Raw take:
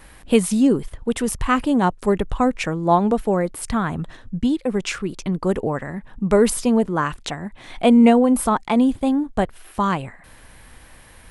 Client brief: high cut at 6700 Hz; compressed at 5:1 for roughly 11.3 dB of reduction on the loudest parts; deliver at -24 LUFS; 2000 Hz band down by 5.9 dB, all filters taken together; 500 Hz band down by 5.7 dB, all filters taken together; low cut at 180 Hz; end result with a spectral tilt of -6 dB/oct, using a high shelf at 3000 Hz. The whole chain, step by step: HPF 180 Hz; LPF 6700 Hz; bell 500 Hz -6.5 dB; bell 2000 Hz -6 dB; high shelf 3000 Hz -4.5 dB; compressor 5:1, threshold -25 dBFS; gain +6.5 dB

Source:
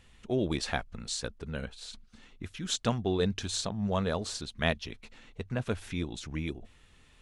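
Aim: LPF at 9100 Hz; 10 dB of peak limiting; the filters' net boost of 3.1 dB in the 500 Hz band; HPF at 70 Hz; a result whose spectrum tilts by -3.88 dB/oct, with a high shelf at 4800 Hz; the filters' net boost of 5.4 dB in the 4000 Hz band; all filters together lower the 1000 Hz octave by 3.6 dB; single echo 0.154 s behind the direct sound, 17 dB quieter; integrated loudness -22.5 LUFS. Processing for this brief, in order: HPF 70 Hz; LPF 9100 Hz; bell 500 Hz +6 dB; bell 1000 Hz -9 dB; bell 4000 Hz +3.5 dB; high shelf 4800 Hz +7 dB; limiter -22 dBFS; echo 0.154 s -17 dB; gain +12 dB

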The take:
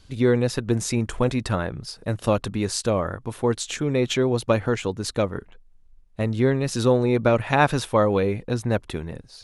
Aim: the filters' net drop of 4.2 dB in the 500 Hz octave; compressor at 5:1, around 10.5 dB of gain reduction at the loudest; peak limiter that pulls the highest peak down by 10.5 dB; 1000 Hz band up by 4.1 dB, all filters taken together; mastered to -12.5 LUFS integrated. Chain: bell 500 Hz -7 dB; bell 1000 Hz +7.5 dB; compressor 5:1, threshold -22 dBFS; gain +18 dB; limiter -1 dBFS

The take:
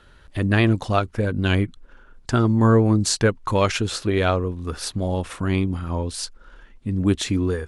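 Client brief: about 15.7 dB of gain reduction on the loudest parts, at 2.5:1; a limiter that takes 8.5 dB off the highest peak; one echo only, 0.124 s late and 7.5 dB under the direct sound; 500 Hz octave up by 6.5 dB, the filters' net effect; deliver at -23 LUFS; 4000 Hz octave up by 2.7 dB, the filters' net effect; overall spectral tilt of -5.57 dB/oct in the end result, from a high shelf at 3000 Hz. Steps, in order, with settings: bell 500 Hz +8 dB; high shelf 3000 Hz -5.5 dB; bell 4000 Hz +7.5 dB; compressor 2.5:1, threshold -33 dBFS; limiter -23.5 dBFS; echo 0.124 s -7.5 dB; gain +10 dB

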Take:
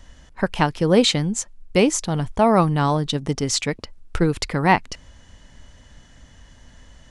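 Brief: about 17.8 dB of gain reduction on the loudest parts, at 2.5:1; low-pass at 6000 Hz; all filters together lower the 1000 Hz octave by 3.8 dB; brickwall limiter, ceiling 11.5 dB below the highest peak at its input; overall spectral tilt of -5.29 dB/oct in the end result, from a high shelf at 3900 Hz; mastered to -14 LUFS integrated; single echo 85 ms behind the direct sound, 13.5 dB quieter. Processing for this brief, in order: LPF 6000 Hz; bell 1000 Hz -4.5 dB; high shelf 3900 Hz -6.5 dB; compressor 2.5:1, threshold -40 dBFS; limiter -29.5 dBFS; echo 85 ms -13.5 dB; gain +27.5 dB

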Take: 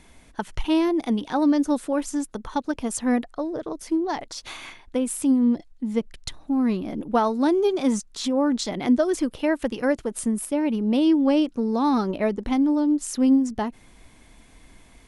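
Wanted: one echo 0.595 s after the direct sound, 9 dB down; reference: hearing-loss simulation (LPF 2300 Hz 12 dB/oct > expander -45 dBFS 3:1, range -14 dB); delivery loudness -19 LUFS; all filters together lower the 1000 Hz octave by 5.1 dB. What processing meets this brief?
LPF 2300 Hz 12 dB/oct; bell 1000 Hz -6.5 dB; echo 0.595 s -9 dB; expander -45 dBFS 3:1, range -14 dB; gain +5 dB

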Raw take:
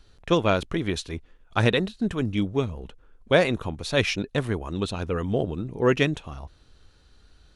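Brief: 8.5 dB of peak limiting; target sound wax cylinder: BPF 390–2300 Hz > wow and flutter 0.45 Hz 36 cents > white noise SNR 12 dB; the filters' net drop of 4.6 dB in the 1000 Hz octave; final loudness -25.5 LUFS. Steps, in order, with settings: bell 1000 Hz -6 dB; limiter -15 dBFS; BPF 390–2300 Hz; wow and flutter 0.45 Hz 36 cents; white noise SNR 12 dB; gain +8.5 dB

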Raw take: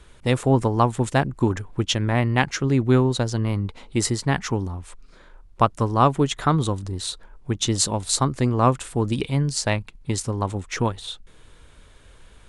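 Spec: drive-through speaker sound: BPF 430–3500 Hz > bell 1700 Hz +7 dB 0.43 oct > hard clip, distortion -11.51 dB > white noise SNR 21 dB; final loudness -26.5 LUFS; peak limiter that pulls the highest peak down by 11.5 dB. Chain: limiter -14.5 dBFS; BPF 430–3500 Hz; bell 1700 Hz +7 dB 0.43 oct; hard clip -22 dBFS; white noise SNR 21 dB; gain +6.5 dB

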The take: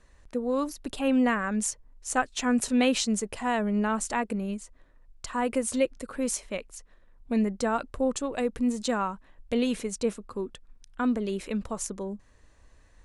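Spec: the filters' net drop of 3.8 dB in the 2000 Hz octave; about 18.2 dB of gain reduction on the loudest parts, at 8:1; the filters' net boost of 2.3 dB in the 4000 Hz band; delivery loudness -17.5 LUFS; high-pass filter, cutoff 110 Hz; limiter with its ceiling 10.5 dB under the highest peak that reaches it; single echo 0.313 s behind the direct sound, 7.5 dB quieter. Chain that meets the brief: HPF 110 Hz; bell 2000 Hz -6.5 dB; bell 4000 Hz +5 dB; compressor 8:1, threshold -40 dBFS; limiter -34.5 dBFS; echo 0.313 s -7.5 dB; gain +27 dB

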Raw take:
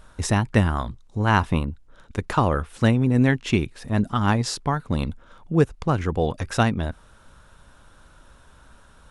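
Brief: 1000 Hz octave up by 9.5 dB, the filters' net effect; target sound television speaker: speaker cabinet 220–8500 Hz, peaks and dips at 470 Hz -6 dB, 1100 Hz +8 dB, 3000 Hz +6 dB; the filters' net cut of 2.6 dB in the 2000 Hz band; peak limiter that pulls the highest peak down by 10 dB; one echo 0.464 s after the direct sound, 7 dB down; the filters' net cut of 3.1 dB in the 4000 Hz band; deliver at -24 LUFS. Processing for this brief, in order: bell 1000 Hz +9 dB; bell 2000 Hz -8.5 dB; bell 4000 Hz -6 dB; limiter -13 dBFS; speaker cabinet 220–8500 Hz, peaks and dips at 470 Hz -6 dB, 1100 Hz +8 dB, 3000 Hz +6 dB; echo 0.464 s -7 dB; gain +1.5 dB

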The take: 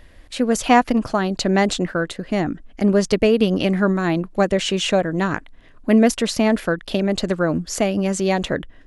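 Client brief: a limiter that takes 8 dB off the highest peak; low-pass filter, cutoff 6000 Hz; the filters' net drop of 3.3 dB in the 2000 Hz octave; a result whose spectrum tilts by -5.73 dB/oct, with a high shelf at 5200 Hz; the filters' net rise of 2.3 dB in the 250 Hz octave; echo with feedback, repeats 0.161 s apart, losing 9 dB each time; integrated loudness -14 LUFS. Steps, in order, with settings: LPF 6000 Hz; bell 250 Hz +3 dB; bell 2000 Hz -5 dB; high shelf 5200 Hz +4.5 dB; limiter -8.5 dBFS; feedback echo 0.161 s, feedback 35%, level -9 dB; gain +5.5 dB

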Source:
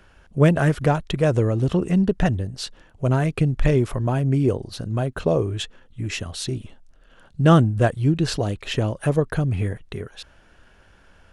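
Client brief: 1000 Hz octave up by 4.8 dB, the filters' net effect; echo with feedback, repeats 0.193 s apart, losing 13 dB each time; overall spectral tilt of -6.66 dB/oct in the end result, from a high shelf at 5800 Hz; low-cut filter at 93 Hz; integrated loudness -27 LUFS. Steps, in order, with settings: HPF 93 Hz; bell 1000 Hz +7 dB; high shelf 5800 Hz -6.5 dB; feedback echo 0.193 s, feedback 22%, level -13 dB; gain -6 dB

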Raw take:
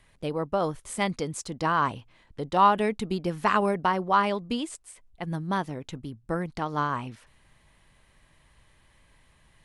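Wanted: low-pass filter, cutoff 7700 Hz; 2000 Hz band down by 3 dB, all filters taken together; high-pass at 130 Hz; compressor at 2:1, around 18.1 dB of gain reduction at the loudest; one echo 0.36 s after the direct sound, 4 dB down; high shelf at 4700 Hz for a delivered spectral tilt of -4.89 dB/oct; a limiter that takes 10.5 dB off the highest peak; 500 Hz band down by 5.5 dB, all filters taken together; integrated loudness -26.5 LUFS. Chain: HPF 130 Hz; LPF 7700 Hz; bell 500 Hz -7 dB; bell 2000 Hz -4 dB; high shelf 4700 Hz +3 dB; compressor 2:1, threshold -51 dBFS; limiter -37.5 dBFS; echo 0.36 s -4 dB; gain +20 dB

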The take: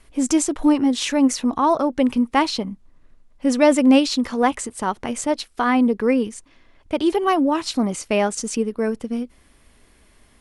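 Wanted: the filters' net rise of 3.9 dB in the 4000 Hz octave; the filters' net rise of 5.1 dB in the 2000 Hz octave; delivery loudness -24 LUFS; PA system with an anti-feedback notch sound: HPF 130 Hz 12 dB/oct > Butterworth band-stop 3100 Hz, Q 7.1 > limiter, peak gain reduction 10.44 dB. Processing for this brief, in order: HPF 130 Hz 12 dB/oct; Butterworth band-stop 3100 Hz, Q 7.1; bell 2000 Hz +5 dB; bell 4000 Hz +5 dB; gain -1.5 dB; limiter -14.5 dBFS

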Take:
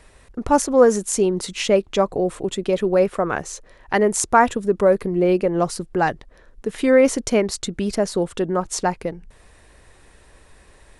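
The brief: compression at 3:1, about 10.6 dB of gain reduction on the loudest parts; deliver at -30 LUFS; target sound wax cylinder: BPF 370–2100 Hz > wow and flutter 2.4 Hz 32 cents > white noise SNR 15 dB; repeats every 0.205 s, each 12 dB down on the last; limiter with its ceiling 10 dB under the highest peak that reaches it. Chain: compressor 3:1, threshold -24 dBFS; limiter -18 dBFS; BPF 370–2100 Hz; feedback echo 0.205 s, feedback 25%, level -12 dB; wow and flutter 2.4 Hz 32 cents; white noise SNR 15 dB; gain +2 dB

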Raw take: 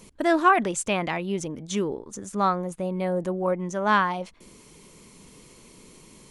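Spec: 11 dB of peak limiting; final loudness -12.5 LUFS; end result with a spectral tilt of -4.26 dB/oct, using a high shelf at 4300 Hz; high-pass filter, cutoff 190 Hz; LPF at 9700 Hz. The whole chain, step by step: HPF 190 Hz; LPF 9700 Hz; high shelf 4300 Hz +3.5 dB; gain +17 dB; limiter -1 dBFS

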